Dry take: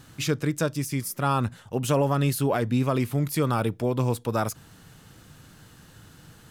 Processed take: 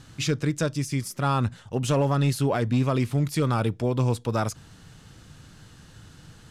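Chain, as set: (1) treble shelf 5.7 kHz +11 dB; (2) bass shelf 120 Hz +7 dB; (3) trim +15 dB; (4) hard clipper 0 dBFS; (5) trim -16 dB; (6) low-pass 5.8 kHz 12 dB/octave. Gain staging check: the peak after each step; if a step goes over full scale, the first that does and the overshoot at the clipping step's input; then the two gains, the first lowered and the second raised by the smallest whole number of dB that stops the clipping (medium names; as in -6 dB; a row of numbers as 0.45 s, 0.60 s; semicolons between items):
-10.5 dBFS, -10.5 dBFS, +4.5 dBFS, 0.0 dBFS, -16.0 dBFS, -15.5 dBFS; step 3, 4.5 dB; step 3 +10 dB, step 5 -11 dB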